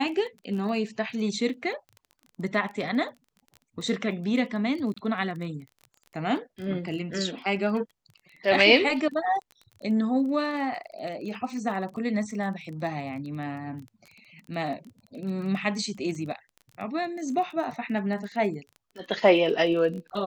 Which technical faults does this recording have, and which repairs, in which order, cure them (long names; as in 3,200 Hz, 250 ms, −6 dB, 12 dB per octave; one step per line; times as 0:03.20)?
surface crackle 21 per second −36 dBFS
0:04.94–0:04.96: drop-out 25 ms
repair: click removal
repair the gap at 0:04.94, 25 ms